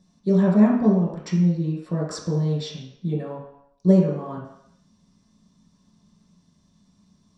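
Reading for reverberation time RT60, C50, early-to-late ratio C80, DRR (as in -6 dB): 0.75 s, 2.5 dB, 6.0 dB, -6.5 dB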